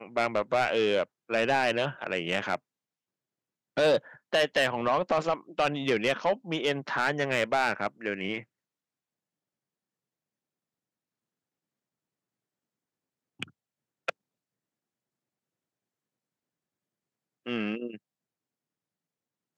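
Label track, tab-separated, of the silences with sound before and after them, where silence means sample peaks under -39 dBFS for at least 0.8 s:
2.560000	3.770000	silence
8.410000	13.400000	silence
14.100000	17.460000	silence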